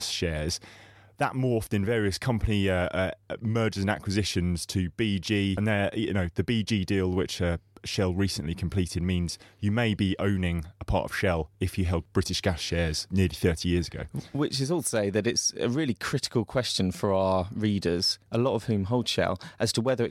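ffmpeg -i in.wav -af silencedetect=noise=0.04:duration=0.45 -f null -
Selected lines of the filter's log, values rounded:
silence_start: 0.56
silence_end: 1.21 | silence_duration: 0.64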